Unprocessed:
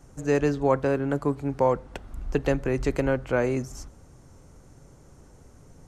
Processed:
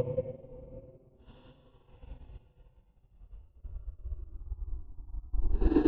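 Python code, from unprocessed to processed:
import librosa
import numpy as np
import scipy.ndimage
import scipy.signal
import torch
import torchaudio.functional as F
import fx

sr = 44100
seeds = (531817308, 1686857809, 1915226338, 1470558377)

p1 = fx.wiener(x, sr, points=25)
p2 = scipy.signal.sosfilt(scipy.signal.butter(4, 3900.0, 'lowpass', fs=sr, output='sos'), p1)
p3 = p2 + fx.room_flutter(p2, sr, wall_m=9.3, rt60_s=0.27, dry=0)
p4 = fx.phaser_stages(p3, sr, stages=6, low_hz=140.0, high_hz=1400.0, hz=0.75, feedback_pct=40)
p5 = fx.room_shoebox(p4, sr, seeds[0], volume_m3=69.0, walls='mixed', distance_m=0.66)
p6 = fx.paulstretch(p5, sr, seeds[1], factor=11.0, window_s=0.05, from_s=1.83)
p7 = fx.upward_expand(p6, sr, threshold_db=-40.0, expansion=2.5)
y = p7 * librosa.db_to_amplitude(2.0)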